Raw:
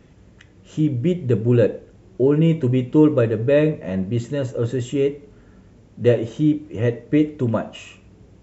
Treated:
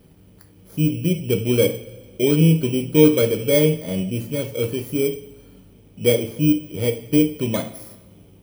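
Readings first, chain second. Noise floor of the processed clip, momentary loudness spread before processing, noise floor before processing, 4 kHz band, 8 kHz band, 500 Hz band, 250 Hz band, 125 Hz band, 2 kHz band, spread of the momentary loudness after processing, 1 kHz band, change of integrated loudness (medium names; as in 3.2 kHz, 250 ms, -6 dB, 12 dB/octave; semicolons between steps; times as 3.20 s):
-50 dBFS, 9 LU, -50 dBFS, +10.0 dB, no reading, 0.0 dB, 0.0 dB, -1.0 dB, +2.5 dB, 11 LU, -3.0 dB, +0.5 dB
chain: bit-reversed sample order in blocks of 16 samples; two-slope reverb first 0.29 s, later 1.6 s, from -16 dB, DRR 6 dB; trim -2 dB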